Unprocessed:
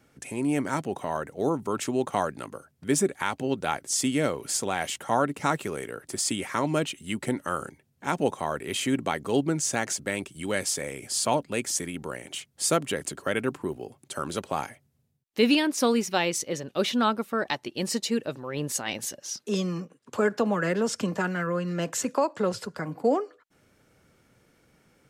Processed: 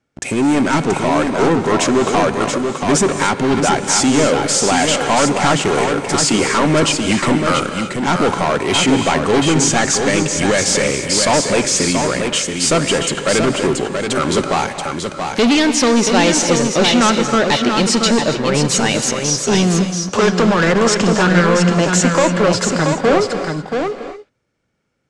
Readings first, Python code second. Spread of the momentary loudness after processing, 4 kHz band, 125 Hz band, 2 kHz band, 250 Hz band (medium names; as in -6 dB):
6 LU, +15.5 dB, +15.0 dB, +14.0 dB, +13.5 dB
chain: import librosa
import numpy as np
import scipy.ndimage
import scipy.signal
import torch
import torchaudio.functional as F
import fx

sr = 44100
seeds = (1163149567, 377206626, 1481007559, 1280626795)

p1 = fx.leveller(x, sr, passes=5)
p2 = scipy.signal.sosfilt(scipy.signal.butter(4, 8000.0, 'lowpass', fs=sr, output='sos'), p1)
p3 = p2 + fx.echo_single(p2, sr, ms=680, db=-5.5, dry=0)
y = fx.rev_gated(p3, sr, seeds[0], gate_ms=310, shape='rising', drr_db=8.5)